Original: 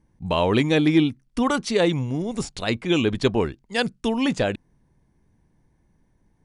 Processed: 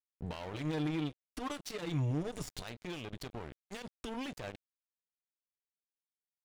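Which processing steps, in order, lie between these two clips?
parametric band 220 Hz −3.5 dB 0.68 octaves
tuned comb filter 120 Hz, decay 0.2 s, harmonics all, mix 40%
downward compressor 8 to 1, threshold −34 dBFS, peak gain reduction 16.5 dB
low-shelf EQ 150 Hz +6 dB
brickwall limiter −31 dBFS, peak gain reduction 9.5 dB
0:00.53–0:02.60: comb filter 6.6 ms, depth 75%
dead-zone distortion −42 dBFS
level +3 dB

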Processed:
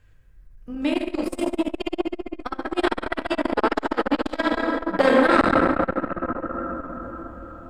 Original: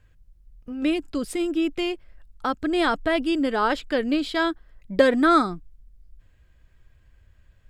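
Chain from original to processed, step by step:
parametric band 82 Hz −2.5 dB 1.5 octaves, from 0:05.41 +8 dB
dense smooth reverb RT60 4.5 s, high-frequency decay 0.3×, DRR −4 dB
saturating transformer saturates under 970 Hz
level +1 dB

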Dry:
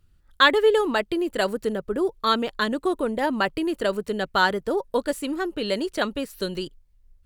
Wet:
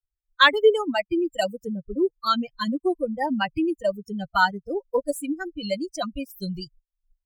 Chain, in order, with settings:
spectral dynamics exaggerated over time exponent 3
in parallel at −1 dB: downward compressor, threshold −35 dBFS, peak gain reduction 19.5 dB
on the sum: level +3 dB

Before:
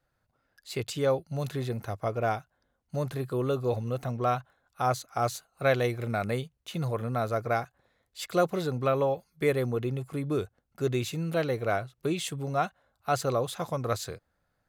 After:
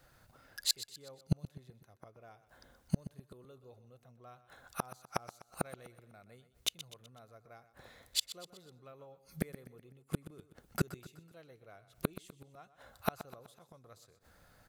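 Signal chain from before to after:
high-shelf EQ 3,200 Hz +6 dB
gate with flip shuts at −27 dBFS, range −40 dB
repeating echo 125 ms, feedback 47%, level −14.5 dB
level +11.5 dB

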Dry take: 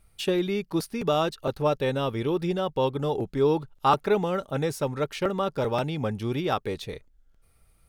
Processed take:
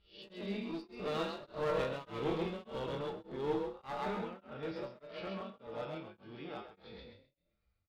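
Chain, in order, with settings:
peak hold with a rise ahead of every peak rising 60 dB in 0.31 s
source passing by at 0:02.19, 7 m/s, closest 6.5 metres
elliptic low-pass filter 4,800 Hz
in parallel at −2.5 dB: downward compressor, threshold −39 dBFS, peak gain reduction 17 dB
on the sum: tuned comb filter 65 Hz, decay 0.4 s, harmonics odd, mix 90%
asymmetric clip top −40 dBFS
on a send: echo with shifted repeats 132 ms, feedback 35%, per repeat +36 Hz, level −4 dB
on the sum: tremolo along a rectified sine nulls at 1.7 Hz
level +3.5 dB

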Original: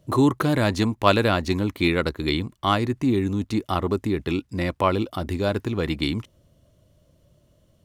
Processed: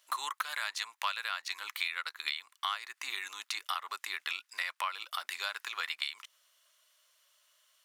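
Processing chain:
high-pass filter 1,200 Hz 24 dB per octave
downward compressor 6 to 1, threshold −37 dBFS, peak gain reduction 18 dB
level +5 dB

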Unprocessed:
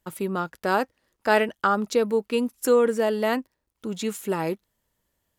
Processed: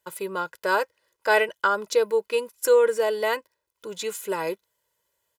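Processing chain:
high-pass filter 520 Hz 6 dB per octave
comb filter 2 ms, depth 79%

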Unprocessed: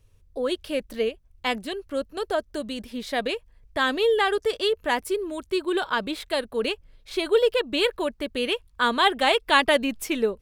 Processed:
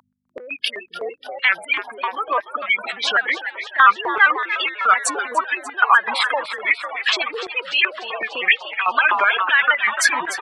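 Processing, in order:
pitch shifter gated in a rhythm −4.5 semitones, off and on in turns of 99 ms
gate on every frequency bin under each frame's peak −15 dB strong
dynamic equaliser 4,300 Hz, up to −4 dB, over −43 dBFS, Q 0.75
downward compressor 6 to 1, threshold −36 dBFS, peak gain reduction 19.5 dB
mains hum 50 Hz, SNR 22 dB
echo with shifted repeats 294 ms, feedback 63%, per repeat +86 Hz, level −14 dB
boost into a limiter +33 dB
high-pass on a step sequencer 7.9 Hz 990–2,100 Hz
level −7.5 dB

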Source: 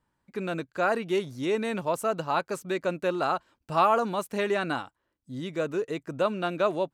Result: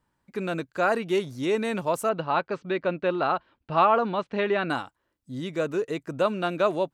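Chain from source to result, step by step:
0:02.09–0:04.70: low-pass filter 3,900 Hz 24 dB per octave
level +2 dB

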